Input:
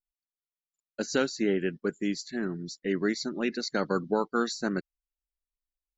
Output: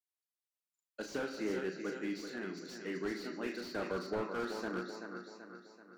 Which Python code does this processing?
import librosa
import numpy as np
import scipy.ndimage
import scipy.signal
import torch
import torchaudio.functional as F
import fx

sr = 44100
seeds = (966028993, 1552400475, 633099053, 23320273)

y = scipy.signal.sosfilt(scipy.signal.butter(2, 150.0, 'highpass', fs=sr, output='sos'), x)
y = fx.high_shelf(y, sr, hz=2000.0, db=-7.0)
y = fx.env_lowpass_down(y, sr, base_hz=2500.0, full_db=-24.5)
y = fx.tilt_eq(y, sr, slope=3.0)
y = fx.doubler(y, sr, ms=37.0, db=-8.5)
y = fx.echo_feedback(y, sr, ms=383, feedback_pct=49, wet_db=-8.5)
y = fx.room_shoebox(y, sr, seeds[0], volume_m3=590.0, walls='mixed', distance_m=0.52)
y = fx.slew_limit(y, sr, full_power_hz=31.0)
y = F.gain(torch.from_numpy(y), -5.5).numpy()